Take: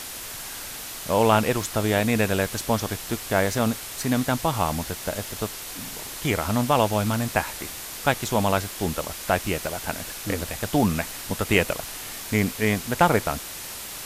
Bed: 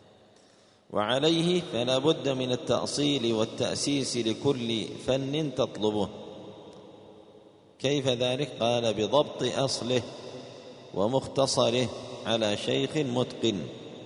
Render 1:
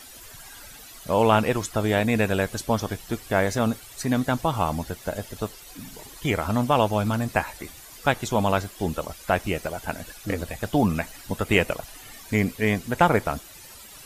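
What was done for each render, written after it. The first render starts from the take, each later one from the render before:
broadband denoise 13 dB, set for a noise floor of −36 dBFS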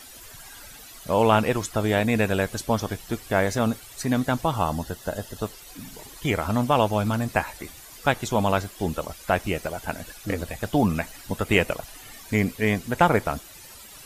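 0:04.54–0:05.44: Butterworth band-reject 2,300 Hz, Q 4.9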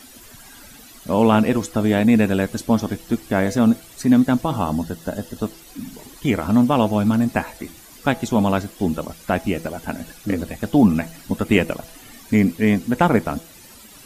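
parametric band 240 Hz +11 dB 1 octave
hum removal 164.8 Hz, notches 5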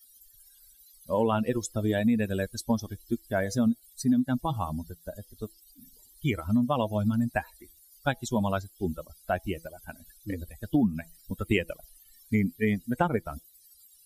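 spectral dynamics exaggerated over time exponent 2
downward compressor 6 to 1, threshold −21 dBFS, peak gain reduction 10 dB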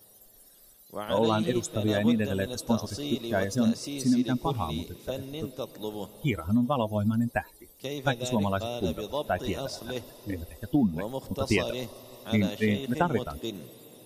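mix in bed −8.5 dB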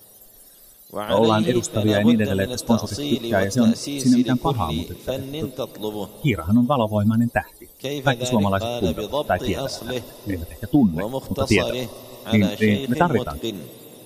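level +7.5 dB

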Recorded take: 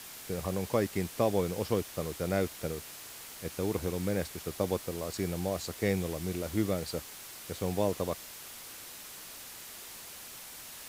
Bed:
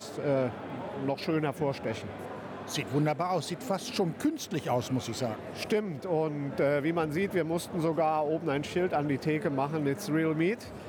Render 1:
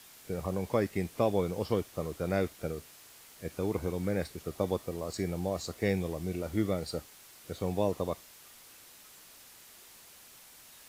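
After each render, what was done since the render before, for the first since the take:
noise reduction from a noise print 8 dB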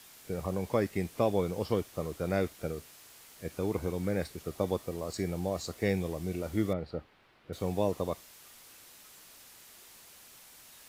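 0:06.73–0:07.53: high-frequency loss of the air 390 metres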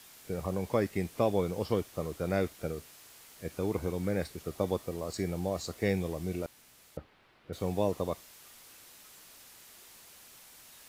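0:06.46–0:06.97: fill with room tone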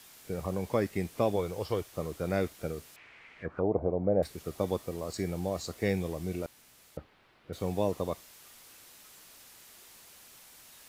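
0:01.36–0:01.93: parametric band 220 Hz −9.5 dB
0:02.96–0:04.23: envelope-controlled low-pass 660–2,500 Hz down, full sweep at −29.5 dBFS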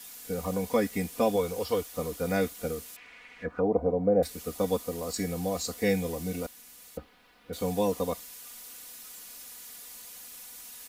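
high-shelf EQ 5,900 Hz +9 dB
comb filter 4.1 ms, depth 92%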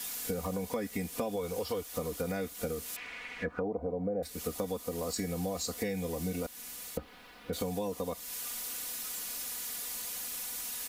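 in parallel at +2 dB: brickwall limiter −22 dBFS, peak gain reduction 9.5 dB
on the sum: downward compressor 6 to 1, threshold −32 dBFS, peak gain reduction 15.5 dB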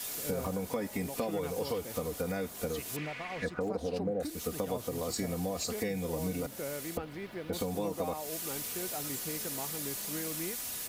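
mix in bed −12.5 dB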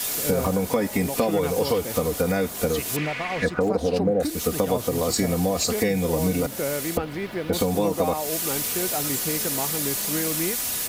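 level +11.5 dB

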